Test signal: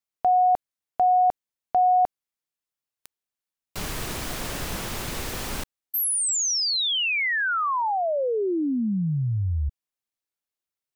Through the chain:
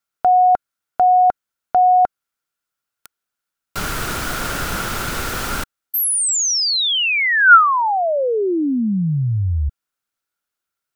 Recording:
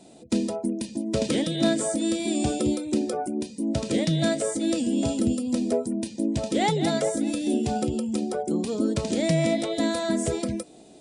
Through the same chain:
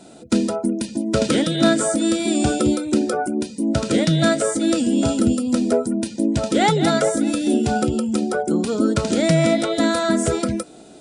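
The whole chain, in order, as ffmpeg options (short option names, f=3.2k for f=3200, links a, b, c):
-af "equalizer=f=1.4k:t=o:w=0.27:g=14,volume=6dB"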